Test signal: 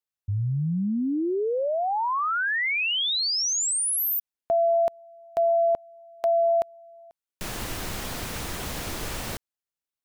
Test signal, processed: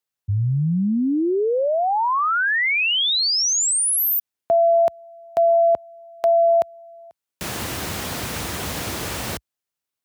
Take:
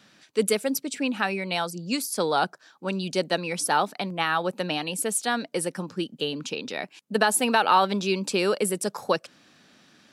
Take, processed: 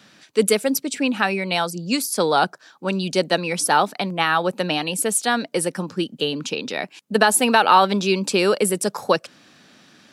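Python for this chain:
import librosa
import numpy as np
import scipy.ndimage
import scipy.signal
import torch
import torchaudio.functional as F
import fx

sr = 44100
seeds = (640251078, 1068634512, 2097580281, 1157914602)

y = scipy.signal.sosfilt(scipy.signal.butter(4, 61.0, 'highpass', fs=sr, output='sos'), x)
y = y * 10.0 ** (5.5 / 20.0)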